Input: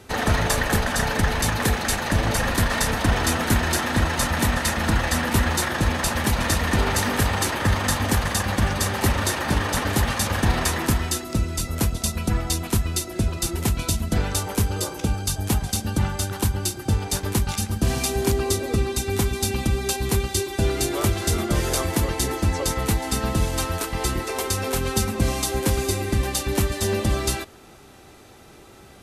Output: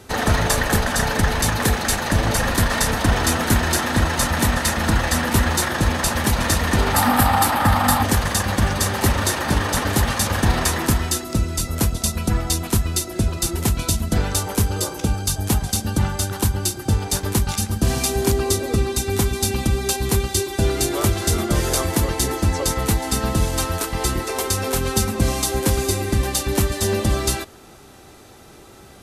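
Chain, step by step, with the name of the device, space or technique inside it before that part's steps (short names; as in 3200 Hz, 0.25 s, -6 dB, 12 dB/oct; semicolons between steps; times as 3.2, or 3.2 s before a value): exciter from parts (in parallel at -12 dB: HPF 2200 Hz 24 dB/oct + soft clip -21.5 dBFS, distortion -14 dB); 6.94–8.03 on the sum: thirty-one-band EQ 250 Hz +7 dB, 400 Hz -10 dB, 800 Hz +12 dB, 1250 Hz +7 dB, 6300 Hz -7 dB, 12500 Hz +7 dB; gain +2.5 dB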